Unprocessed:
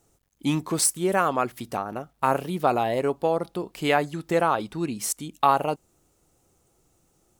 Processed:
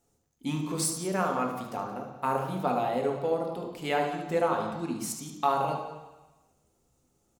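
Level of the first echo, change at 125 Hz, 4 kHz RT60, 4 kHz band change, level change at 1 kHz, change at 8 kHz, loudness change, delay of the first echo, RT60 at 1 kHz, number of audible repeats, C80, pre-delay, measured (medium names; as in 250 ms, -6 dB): -8.5 dB, -4.0 dB, 1.2 s, -6.0 dB, -5.0 dB, -7.0 dB, -5.0 dB, 74 ms, 1.2 s, 2, 7.0 dB, 3 ms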